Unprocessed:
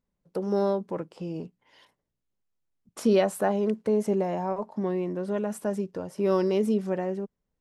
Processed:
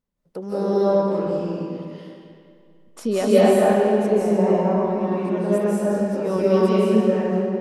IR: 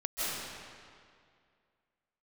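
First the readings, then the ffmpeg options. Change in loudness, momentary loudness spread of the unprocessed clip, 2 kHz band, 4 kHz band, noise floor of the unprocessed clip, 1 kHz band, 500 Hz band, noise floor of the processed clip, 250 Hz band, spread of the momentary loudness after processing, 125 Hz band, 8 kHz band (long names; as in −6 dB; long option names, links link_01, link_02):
+8.0 dB, 12 LU, +7.5 dB, +7.0 dB, −83 dBFS, +8.0 dB, +8.0 dB, −52 dBFS, +8.0 dB, 14 LU, +8.5 dB, +5.5 dB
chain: -filter_complex "[1:a]atrim=start_sample=2205,asetrate=41895,aresample=44100[link_01];[0:a][link_01]afir=irnorm=-1:irlink=0"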